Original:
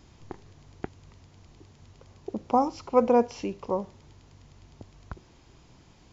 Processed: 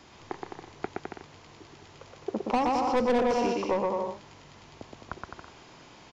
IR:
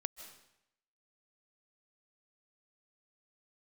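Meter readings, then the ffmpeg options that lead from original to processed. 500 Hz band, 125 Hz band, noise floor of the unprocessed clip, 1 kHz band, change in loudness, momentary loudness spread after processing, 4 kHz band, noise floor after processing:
−1.0 dB, −1.0 dB, −57 dBFS, +0.5 dB, −2.5 dB, 21 LU, +7.5 dB, −53 dBFS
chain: -filter_complex "[0:a]aecho=1:1:120|210|277.5|328.1|366.1:0.631|0.398|0.251|0.158|0.1,asplit=2[link_01][link_02];[link_02]highpass=frequency=720:poles=1,volume=22dB,asoftclip=type=tanh:threshold=-6.5dB[link_03];[link_01][link_03]amix=inputs=2:normalize=0,lowpass=frequency=3000:poles=1,volume=-6dB,acrossover=split=310|3000[link_04][link_05][link_06];[link_05]acompressor=threshold=-18dB:ratio=6[link_07];[link_04][link_07][link_06]amix=inputs=3:normalize=0,volume=-6dB"

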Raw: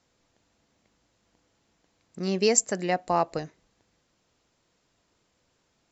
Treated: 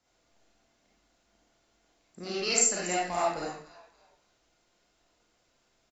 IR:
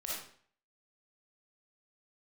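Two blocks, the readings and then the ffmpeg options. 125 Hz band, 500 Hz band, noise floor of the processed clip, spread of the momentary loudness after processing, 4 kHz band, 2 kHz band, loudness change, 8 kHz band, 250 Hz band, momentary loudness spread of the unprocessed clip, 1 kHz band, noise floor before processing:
−10.0 dB, −6.0 dB, −72 dBFS, 18 LU, +1.0 dB, +0.5 dB, −2.0 dB, can't be measured, −8.0 dB, 14 LU, −3.0 dB, −72 dBFS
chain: -filter_complex "[0:a]equalizer=frequency=140:width_type=o:width=0.58:gain=-5,acrossover=split=310|980[link_01][link_02][link_03];[link_01]alimiter=level_in=10dB:limit=-24dB:level=0:latency=1,volume=-10dB[link_04];[link_02]asoftclip=type=tanh:threshold=-32dB[link_05];[link_03]asplit=4[link_06][link_07][link_08][link_09];[link_07]adelay=283,afreqshift=-90,volume=-14dB[link_10];[link_08]adelay=566,afreqshift=-180,volume=-23.1dB[link_11];[link_09]adelay=849,afreqshift=-270,volume=-32.2dB[link_12];[link_06][link_10][link_11][link_12]amix=inputs=4:normalize=0[link_13];[link_04][link_05][link_13]amix=inputs=3:normalize=0[link_14];[1:a]atrim=start_sample=2205,asetrate=48510,aresample=44100[link_15];[link_14][link_15]afir=irnorm=-1:irlink=0"

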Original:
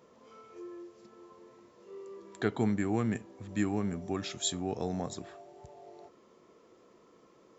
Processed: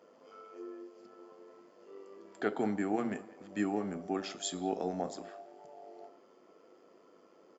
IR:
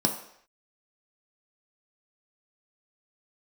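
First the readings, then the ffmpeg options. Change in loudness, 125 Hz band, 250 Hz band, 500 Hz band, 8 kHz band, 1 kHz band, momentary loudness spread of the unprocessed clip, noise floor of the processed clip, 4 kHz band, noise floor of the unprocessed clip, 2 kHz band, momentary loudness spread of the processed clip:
−2.5 dB, −10.0 dB, −2.5 dB, 0.0 dB, can't be measured, +2.0 dB, 21 LU, −63 dBFS, −5.0 dB, −62 dBFS, −1.5 dB, 21 LU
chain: -filter_complex "[0:a]highpass=390,highshelf=frequency=5100:gain=-8,asplit=2[link_01][link_02];[link_02]adelay=190,highpass=300,lowpass=3400,asoftclip=type=hard:threshold=-28.5dB,volume=-19dB[link_03];[link_01][link_03]amix=inputs=2:normalize=0,asplit=2[link_04][link_05];[1:a]atrim=start_sample=2205,asetrate=38367,aresample=44100[link_06];[link_05][link_06]afir=irnorm=-1:irlink=0,volume=-15dB[link_07];[link_04][link_07]amix=inputs=2:normalize=0,tremolo=f=100:d=0.462"

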